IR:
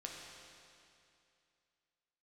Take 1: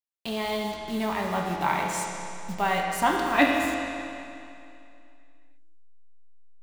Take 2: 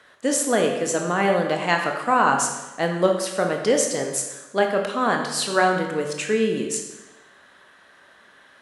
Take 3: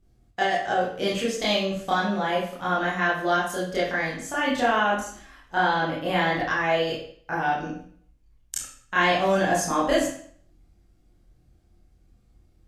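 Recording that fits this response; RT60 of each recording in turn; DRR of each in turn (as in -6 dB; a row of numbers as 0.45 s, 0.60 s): 1; 2.6 s, 1.1 s, 0.55 s; -1.5 dB, 2.5 dB, -8.0 dB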